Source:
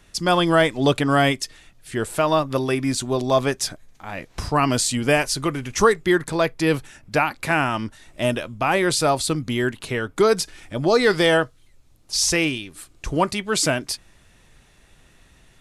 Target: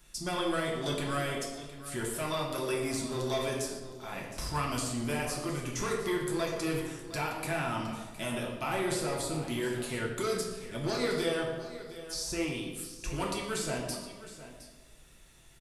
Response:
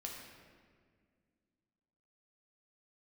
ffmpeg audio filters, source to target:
-filter_complex "[0:a]aemphasis=mode=production:type=50kf,acrossover=split=1400[s0][s1];[s0]asoftclip=type=tanh:threshold=0.075[s2];[s1]acompressor=threshold=0.0355:ratio=6[s3];[s2][s3]amix=inputs=2:normalize=0,aecho=1:1:119|714:0.141|0.188[s4];[1:a]atrim=start_sample=2205,asetrate=83790,aresample=44100[s5];[s4][s5]afir=irnorm=-1:irlink=0"

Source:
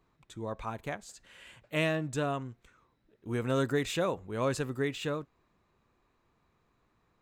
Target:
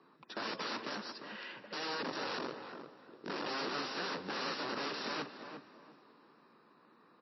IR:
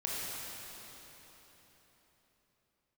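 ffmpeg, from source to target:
-filter_complex "[0:a]acrossover=split=500|1700[s0][s1][s2];[s1]crystalizer=i=3:c=0[s3];[s0][s3][s2]amix=inputs=3:normalize=0,asoftclip=type=tanh:threshold=0.0299,asettb=1/sr,asplit=3[s4][s5][s6];[s4]atrim=end=0.804[s7];[s5]atrim=start=0.8:end=1.44,asetpts=PTS-STARTPTS,afade=t=in:d=0.004:c=qsin,afade=t=out:st=0.636:d=0.004:c=qsin,acrusher=bits=3:mode=log:mix=0:aa=0.000001[s8];[s6]atrim=start=1.436[s9];[s7][s8]acrossfade=d=0.004:c1=hsin:c2=qsin[s10];[s10][s9]acrossfade=d=0.004:c1=qsin:c2=hsin,asplit=3[s11][s12][s13];[s11]afade=t=out:st=2.02:d=0.02[s14];[s12]aeval=exprs='val(0)*sin(2*PI*24*n/s)':c=same,afade=t=in:st=2.02:d=0.02,afade=t=out:st=3.47:d=0.02[s15];[s13]afade=t=in:st=3.47:d=0.02[s16];[s14][s15][s16]amix=inputs=3:normalize=0,aeval=exprs='(mod(106*val(0)+1,2)-1)/106':c=same,highpass=f=210:w=0.5412,highpass=f=210:w=1.3066,equalizer=f=690:t=q:w=4:g=-6,equalizer=f=2200:t=q:w=4:g=-9,equalizer=f=3300:t=q:w=4:g=-8,lowpass=f=5400:w=0.5412,lowpass=f=5400:w=1.3066,asplit=2[s17][s18];[s18]adelay=350,lowpass=f=1600:p=1,volume=0.447,asplit=2[s19][s20];[s20]adelay=350,lowpass=f=1600:p=1,volume=0.28,asplit=2[s21][s22];[s22]adelay=350,lowpass=f=1600:p=1,volume=0.28[s23];[s17][s19][s21][s23]amix=inputs=4:normalize=0,asplit=2[s24][s25];[1:a]atrim=start_sample=2205,adelay=42[s26];[s25][s26]afir=irnorm=-1:irlink=0,volume=0.0708[s27];[s24][s27]amix=inputs=2:normalize=0,volume=3.35" -ar 16000 -c:a libmp3lame -b:a 24k

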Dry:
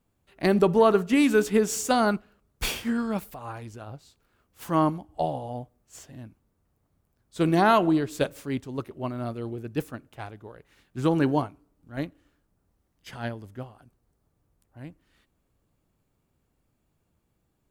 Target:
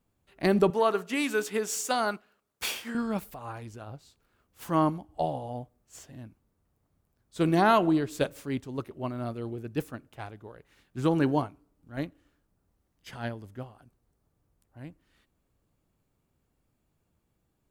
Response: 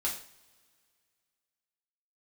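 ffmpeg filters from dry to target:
-filter_complex "[0:a]asettb=1/sr,asplit=3[s0][s1][s2];[s0]atrim=end=0.704[s3];[s1]atrim=start=0.7:end=2.95,asetpts=PTS-STARTPTS,afade=t=in:d=0.004:c=qsin,afade=t=out:st=2.246:d=0.004:c=qsin,highpass=f=660:p=1[s4];[s2]atrim=start=2.946[s5];[s3][s4]acrossfade=d=0.004:c1=hsin:c2=qsin[s6];[s6][s5]acrossfade=d=0.004:c1=qsin:c2=hsin,volume=0.794"

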